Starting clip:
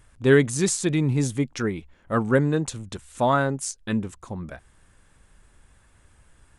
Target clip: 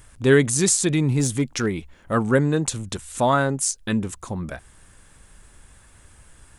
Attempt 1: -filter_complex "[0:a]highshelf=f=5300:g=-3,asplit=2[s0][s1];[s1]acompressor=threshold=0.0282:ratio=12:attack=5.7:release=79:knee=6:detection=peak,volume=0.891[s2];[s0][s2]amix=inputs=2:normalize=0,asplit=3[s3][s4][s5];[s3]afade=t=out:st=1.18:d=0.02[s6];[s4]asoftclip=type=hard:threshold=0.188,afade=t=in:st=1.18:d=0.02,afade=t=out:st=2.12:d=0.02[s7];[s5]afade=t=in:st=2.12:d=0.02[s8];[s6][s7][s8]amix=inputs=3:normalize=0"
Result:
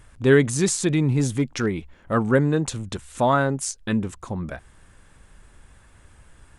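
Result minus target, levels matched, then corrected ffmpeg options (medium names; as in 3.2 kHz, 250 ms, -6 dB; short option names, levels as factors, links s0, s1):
8 kHz band -5.0 dB
-filter_complex "[0:a]highshelf=f=5300:g=7.5,asplit=2[s0][s1];[s1]acompressor=threshold=0.0282:ratio=12:attack=5.7:release=79:knee=6:detection=peak,volume=0.891[s2];[s0][s2]amix=inputs=2:normalize=0,asplit=3[s3][s4][s5];[s3]afade=t=out:st=1.18:d=0.02[s6];[s4]asoftclip=type=hard:threshold=0.188,afade=t=in:st=1.18:d=0.02,afade=t=out:st=2.12:d=0.02[s7];[s5]afade=t=in:st=2.12:d=0.02[s8];[s6][s7][s8]amix=inputs=3:normalize=0"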